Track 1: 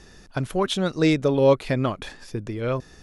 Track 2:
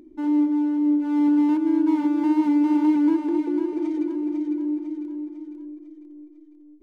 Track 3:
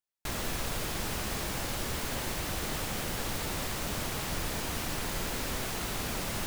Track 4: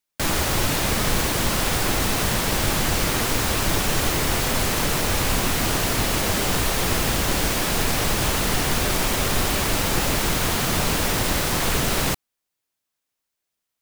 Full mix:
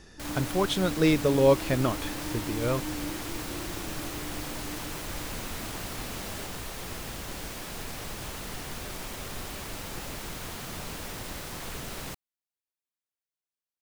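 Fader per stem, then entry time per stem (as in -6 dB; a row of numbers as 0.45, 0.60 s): -3.0, -18.5, -7.5, -16.0 dB; 0.00, 0.00, 0.00, 0.00 s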